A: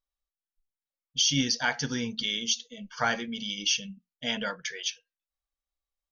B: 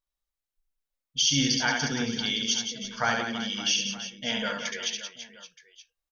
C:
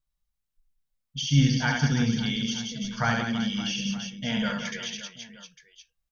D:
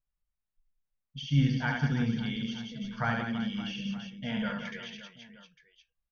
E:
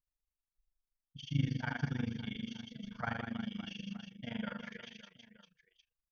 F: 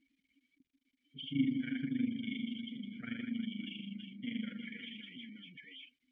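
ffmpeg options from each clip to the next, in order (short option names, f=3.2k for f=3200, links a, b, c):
-af "aecho=1:1:70|175|332.5|568.8|923.1:0.631|0.398|0.251|0.158|0.1"
-filter_complex "[0:a]acrossover=split=2500[a][b];[b]acompressor=threshold=-33dB:ratio=4:attack=1:release=60[c];[a][c]amix=inputs=2:normalize=0,lowshelf=f=240:t=q:w=1.5:g=10"
-af "lowpass=2.7k,volume=-4.5dB"
-af "tremolo=f=25:d=0.919,volume=-4dB"
-filter_complex "[0:a]aeval=exprs='val(0)+0.5*0.00794*sgn(val(0))':c=same,asplit=3[a][b][c];[a]bandpass=f=270:t=q:w=8,volume=0dB[d];[b]bandpass=f=2.29k:t=q:w=8,volume=-6dB[e];[c]bandpass=f=3.01k:t=q:w=8,volume=-9dB[f];[d][e][f]amix=inputs=3:normalize=0,afftdn=nr=21:nf=-62,volume=9dB"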